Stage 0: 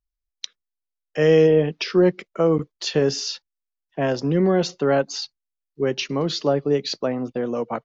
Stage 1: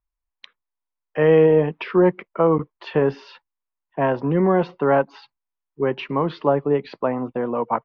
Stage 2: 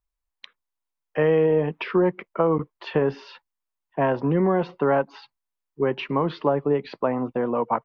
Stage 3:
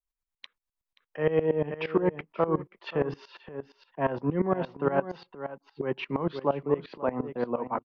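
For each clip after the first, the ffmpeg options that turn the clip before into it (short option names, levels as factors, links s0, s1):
-af "lowpass=f=2600:w=0.5412,lowpass=f=2600:w=1.3066,equalizer=f=970:w=2.5:g=11.5"
-af "acompressor=threshold=0.141:ratio=3"
-af "aecho=1:1:530:0.299,aeval=exprs='val(0)*pow(10,-18*if(lt(mod(-8.6*n/s,1),2*abs(-8.6)/1000),1-mod(-8.6*n/s,1)/(2*abs(-8.6)/1000),(mod(-8.6*n/s,1)-2*abs(-8.6)/1000)/(1-2*abs(-8.6)/1000))/20)':c=same"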